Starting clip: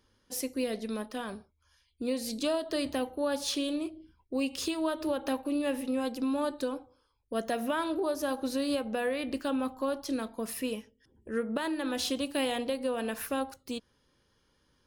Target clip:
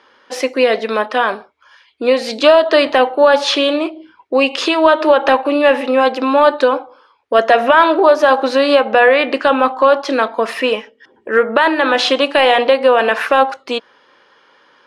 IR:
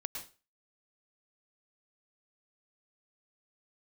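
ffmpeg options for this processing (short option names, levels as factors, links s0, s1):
-af "highpass=640,lowpass=2400,apsyclip=26.6,volume=0.794"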